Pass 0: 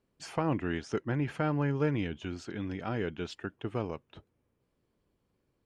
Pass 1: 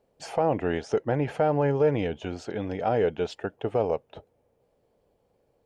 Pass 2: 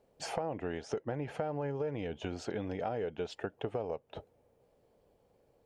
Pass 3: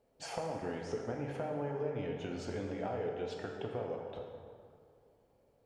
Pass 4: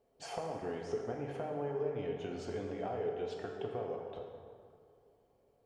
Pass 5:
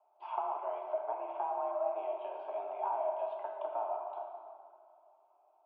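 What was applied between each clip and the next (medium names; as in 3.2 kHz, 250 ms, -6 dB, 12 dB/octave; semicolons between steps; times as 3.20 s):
high-order bell 610 Hz +12 dB 1.2 oct; peak limiter -16.5 dBFS, peak gain reduction 7 dB; trim +3 dB
compression 6:1, threshold -33 dBFS, peak gain reduction 14.5 dB
plate-style reverb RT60 2.2 s, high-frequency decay 0.6×, DRR 0 dB; trim -4.5 dB
small resonant body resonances 410/710/1100/3100 Hz, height 7 dB; trim -3 dB
static phaser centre 680 Hz, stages 4; mistuned SSB +200 Hz 200–2400 Hz; trim +5.5 dB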